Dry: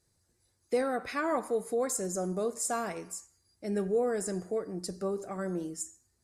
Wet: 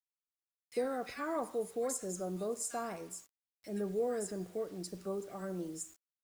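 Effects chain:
multiband delay without the direct sound highs, lows 40 ms, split 1,700 Hz
bit reduction 9 bits
level −5.5 dB

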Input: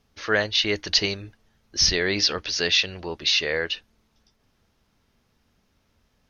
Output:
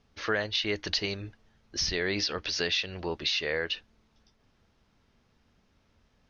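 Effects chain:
downward compressor 3 to 1, threshold −26 dBFS, peak gain reduction 9 dB
high-frequency loss of the air 67 metres

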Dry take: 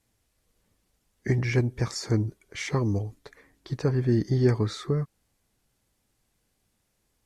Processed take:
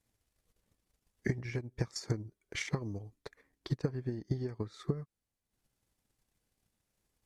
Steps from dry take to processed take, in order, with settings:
downward compressor 4 to 1, threshold −30 dBFS, peak gain reduction 12 dB
transient designer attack +10 dB, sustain −9 dB
level −8 dB

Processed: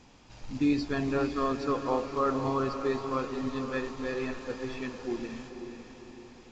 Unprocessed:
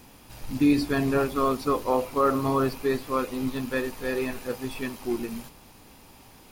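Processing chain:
feedback delay with all-pass diffusion 516 ms, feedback 49%, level −8 dB
level −5.5 dB
A-law companding 128 kbit/s 16,000 Hz

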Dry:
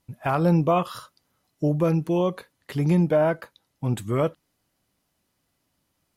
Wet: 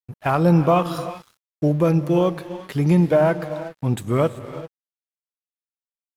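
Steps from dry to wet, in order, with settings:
reverb whose tail is shaped and stops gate 410 ms rising, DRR 11 dB
dead-zone distortion −47.5 dBFS
level +4 dB

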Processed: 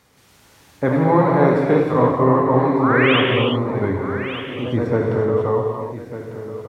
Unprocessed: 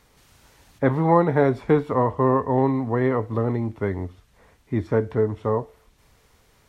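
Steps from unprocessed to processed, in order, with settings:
high-pass filter 79 Hz
in parallel at −3 dB: brickwall limiter −11 dBFS, peak gain reduction 7 dB
on the sum: sound drawn into the spectrogram rise, 0:02.83–0:03.21, 980–3,400 Hz −19 dBFS
delay with pitch and tempo change per echo 130 ms, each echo +1 semitone, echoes 2, each echo −6 dB
single-tap delay 1,199 ms −12 dB
reverb whose tail is shaped and stops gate 380 ms flat, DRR 0.5 dB
level −3.5 dB

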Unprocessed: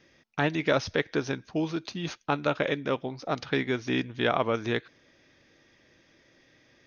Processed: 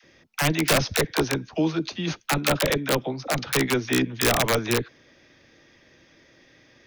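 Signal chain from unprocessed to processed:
wrap-around overflow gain 17.5 dB
all-pass dispersion lows, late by 42 ms, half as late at 500 Hz
level +5.5 dB

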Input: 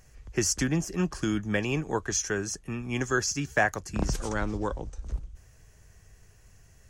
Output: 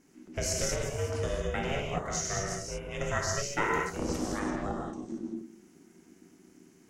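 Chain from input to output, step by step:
reverb whose tail is shaped and stops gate 250 ms flat, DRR −2.5 dB
ring modulation 280 Hz
level −4.5 dB

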